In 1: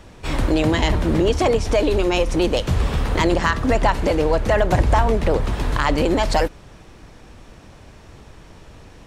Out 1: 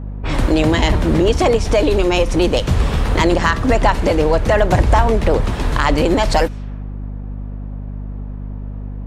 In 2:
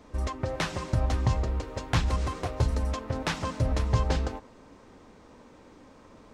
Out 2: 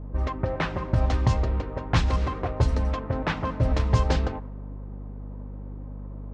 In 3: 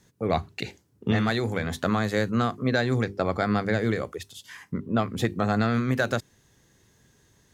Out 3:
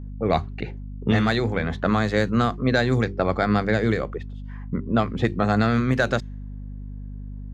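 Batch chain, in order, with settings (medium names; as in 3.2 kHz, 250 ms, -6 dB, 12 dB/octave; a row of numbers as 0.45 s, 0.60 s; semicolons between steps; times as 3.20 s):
level-controlled noise filter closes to 800 Hz, open at -17.5 dBFS; hum 50 Hz, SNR 11 dB; trim +3.5 dB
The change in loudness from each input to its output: +3.5 LU, +3.5 LU, +3.5 LU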